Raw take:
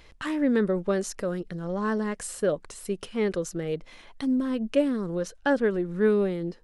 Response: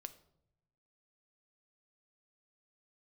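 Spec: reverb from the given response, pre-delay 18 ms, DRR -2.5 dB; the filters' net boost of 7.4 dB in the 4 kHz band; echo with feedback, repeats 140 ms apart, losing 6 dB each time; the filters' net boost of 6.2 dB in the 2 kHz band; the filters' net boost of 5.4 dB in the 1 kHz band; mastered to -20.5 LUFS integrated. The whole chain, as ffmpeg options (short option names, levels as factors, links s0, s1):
-filter_complex "[0:a]equalizer=f=1000:t=o:g=5,equalizer=f=2000:t=o:g=4.5,equalizer=f=4000:t=o:g=8,aecho=1:1:140|280|420|560|700|840:0.501|0.251|0.125|0.0626|0.0313|0.0157,asplit=2[s0][s1];[1:a]atrim=start_sample=2205,adelay=18[s2];[s1][s2]afir=irnorm=-1:irlink=0,volume=2.37[s3];[s0][s3]amix=inputs=2:normalize=0"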